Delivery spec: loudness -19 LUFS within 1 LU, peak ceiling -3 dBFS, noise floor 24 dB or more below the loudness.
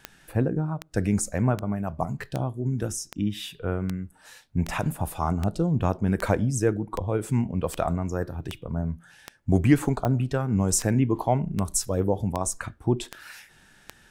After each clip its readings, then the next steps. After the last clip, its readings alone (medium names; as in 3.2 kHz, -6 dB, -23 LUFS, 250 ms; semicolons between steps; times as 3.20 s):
clicks found 19; loudness -26.5 LUFS; peak level -5.5 dBFS; loudness target -19.0 LUFS
-> de-click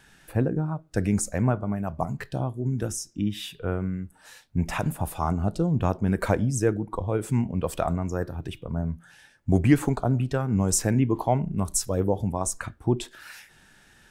clicks found 0; loudness -26.5 LUFS; peak level -5.5 dBFS; loudness target -19.0 LUFS
-> trim +7.5 dB; peak limiter -3 dBFS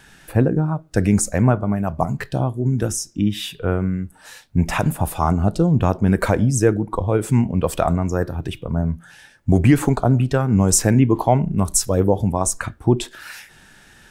loudness -19.5 LUFS; peak level -3.0 dBFS; noise floor -50 dBFS